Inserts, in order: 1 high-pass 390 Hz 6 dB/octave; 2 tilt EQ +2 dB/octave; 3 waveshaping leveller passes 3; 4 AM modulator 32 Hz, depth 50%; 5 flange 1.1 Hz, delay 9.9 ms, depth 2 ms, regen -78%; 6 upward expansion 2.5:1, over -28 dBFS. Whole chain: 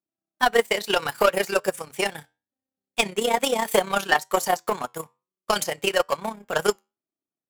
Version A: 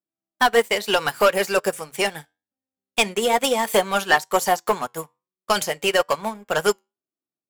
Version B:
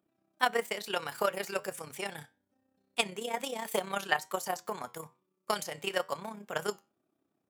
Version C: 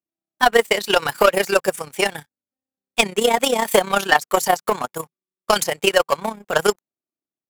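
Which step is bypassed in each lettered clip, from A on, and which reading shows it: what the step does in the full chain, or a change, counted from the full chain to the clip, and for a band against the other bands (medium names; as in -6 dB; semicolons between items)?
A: 4, momentary loudness spread change -1 LU; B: 3, crest factor change +9.5 dB; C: 5, loudness change +5.0 LU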